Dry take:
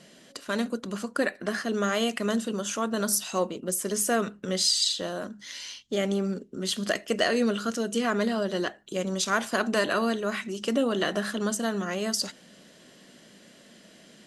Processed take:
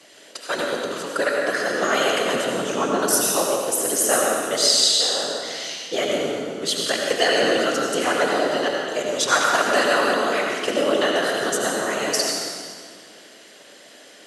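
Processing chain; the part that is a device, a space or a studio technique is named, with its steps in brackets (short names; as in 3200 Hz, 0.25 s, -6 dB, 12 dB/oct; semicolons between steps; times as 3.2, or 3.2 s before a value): 2.54–2.99 RIAA curve playback; whispering ghost (whisperiser; HPF 450 Hz 12 dB/oct; reverb RT60 2.0 s, pre-delay 72 ms, DRR -1 dB); gain +5.5 dB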